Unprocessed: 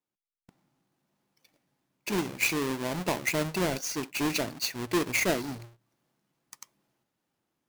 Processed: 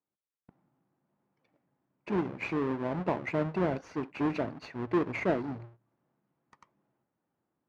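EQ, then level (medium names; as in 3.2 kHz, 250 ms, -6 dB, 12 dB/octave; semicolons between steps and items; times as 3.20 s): high-pass 51 Hz; low-pass 1.4 kHz 12 dB/octave; 0.0 dB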